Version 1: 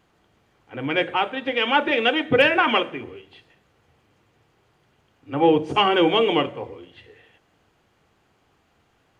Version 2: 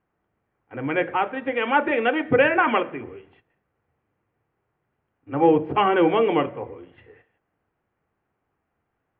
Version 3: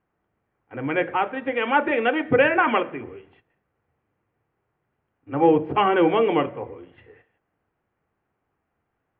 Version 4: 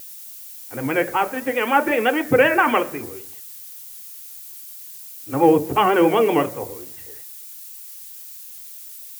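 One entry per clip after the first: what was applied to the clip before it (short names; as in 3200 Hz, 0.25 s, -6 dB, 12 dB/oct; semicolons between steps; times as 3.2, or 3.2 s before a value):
LPF 2200 Hz 24 dB/oct; gate -52 dBFS, range -12 dB
nothing audible
added noise violet -40 dBFS; vibrato 7.8 Hz 67 cents; gain +2.5 dB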